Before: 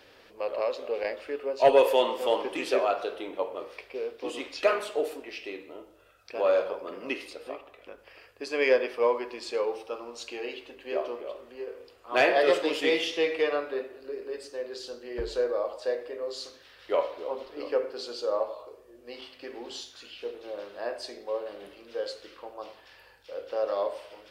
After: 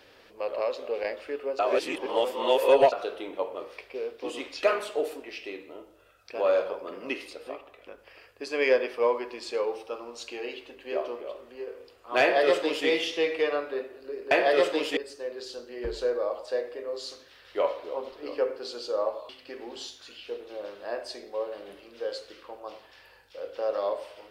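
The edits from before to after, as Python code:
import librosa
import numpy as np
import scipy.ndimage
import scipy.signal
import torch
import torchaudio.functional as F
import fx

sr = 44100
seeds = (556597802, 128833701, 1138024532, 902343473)

y = fx.edit(x, sr, fx.reverse_span(start_s=1.59, length_s=1.33),
    fx.duplicate(start_s=12.21, length_s=0.66, to_s=14.31),
    fx.cut(start_s=18.63, length_s=0.6), tone=tone)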